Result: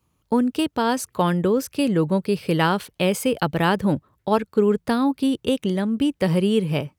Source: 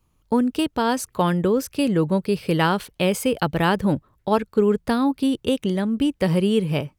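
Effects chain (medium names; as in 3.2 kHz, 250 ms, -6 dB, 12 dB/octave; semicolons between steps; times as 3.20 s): high-pass 73 Hz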